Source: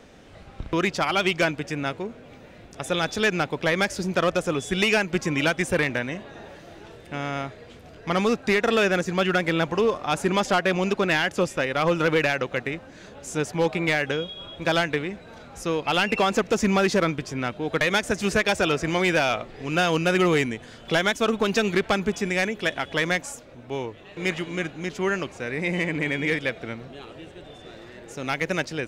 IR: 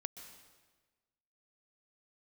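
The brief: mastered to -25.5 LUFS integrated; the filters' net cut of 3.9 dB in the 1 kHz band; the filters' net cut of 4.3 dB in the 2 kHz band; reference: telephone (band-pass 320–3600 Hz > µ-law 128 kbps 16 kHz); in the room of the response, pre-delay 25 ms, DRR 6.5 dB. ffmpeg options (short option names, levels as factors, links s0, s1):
-filter_complex "[0:a]equalizer=f=1000:t=o:g=-4.5,equalizer=f=2000:t=o:g=-3.5,asplit=2[s0][s1];[1:a]atrim=start_sample=2205,adelay=25[s2];[s1][s2]afir=irnorm=-1:irlink=0,volume=0.631[s3];[s0][s3]amix=inputs=2:normalize=0,highpass=320,lowpass=3600,volume=1.19" -ar 16000 -c:a pcm_mulaw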